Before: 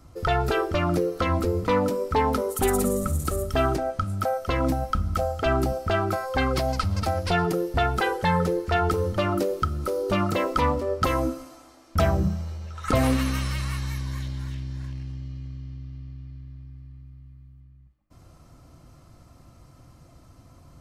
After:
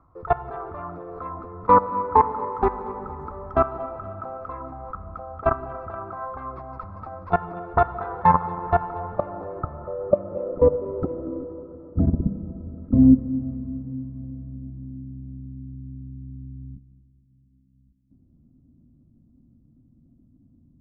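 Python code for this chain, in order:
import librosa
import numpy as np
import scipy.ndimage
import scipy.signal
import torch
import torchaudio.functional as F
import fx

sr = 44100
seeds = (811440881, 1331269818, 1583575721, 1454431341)

p1 = scipy.signal.sosfilt(scipy.signal.butter(2, 7900.0, 'lowpass', fs=sr, output='sos'), x)
p2 = fx.notch(p1, sr, hz=3000.0, q=6.2)
p3 = fx.level_steps(p2, sr, step_db=21)
p4 = fx.filter_sweep_lowpass(p3, sr, from_hz=1100.0, to_hz=240.0, start_s=8.59, end_s=12.29, q=5.0)
p5 = p4 + fx.echo_feedback(p4, sr, ms=235, feedback_pct=53, wet_db=-18.5, dry=0)
p6 = fx.rev_plate(p5, sr, seeds[0], rt60_s=4.8, hf_ratio=0.55, predelay_ms=0, drr_db=11.0)
y = F.gain(torch.from_numpy(p6), 2.5).numpy()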